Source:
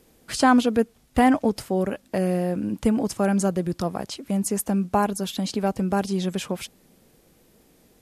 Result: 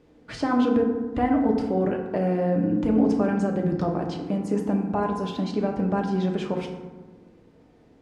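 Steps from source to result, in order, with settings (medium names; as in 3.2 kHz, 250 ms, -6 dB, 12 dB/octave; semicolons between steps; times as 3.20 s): bass shelf 68 Hz -7 dB; peak limiter -16.5 dBFS, peak gain reduction 9 dB; tape spacing loss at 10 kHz 27 dB; FDN reverb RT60 1.3 s, low-frequency decay 1.4×, high-frequency decay 0.45×, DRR 1 dB; trim +1.5 dB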